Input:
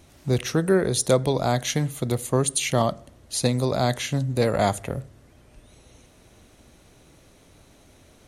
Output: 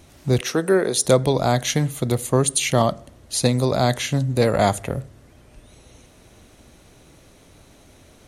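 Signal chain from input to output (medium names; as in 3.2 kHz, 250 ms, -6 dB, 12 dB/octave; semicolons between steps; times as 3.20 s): 0.41–1.05 s: high-pass 260 Hz 12 dB/octave; trim +3.5 dB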